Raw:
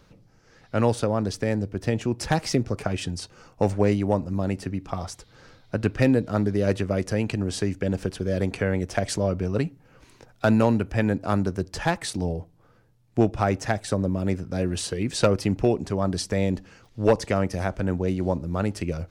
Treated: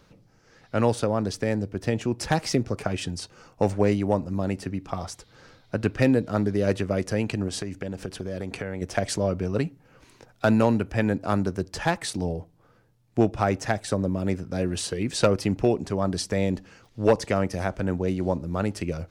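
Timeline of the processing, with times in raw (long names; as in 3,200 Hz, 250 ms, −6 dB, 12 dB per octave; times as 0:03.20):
0:07.48–0:08.82: downward compressor, threshold −26 dBFS
whole clip: low-shelf EQ 88 Hz −5 dB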